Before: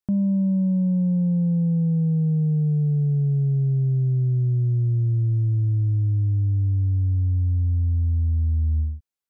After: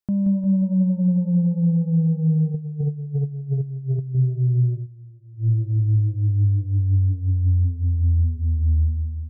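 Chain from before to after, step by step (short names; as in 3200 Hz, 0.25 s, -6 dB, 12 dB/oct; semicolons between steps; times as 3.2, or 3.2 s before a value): feedback echo 0.177 s, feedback 58%, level -6 dB; 2.54–4.15 negative-ratio compressor -24 dBFS, ratio -0.5; 4.75–5.49 dip -23.5 dB, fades 0.12 s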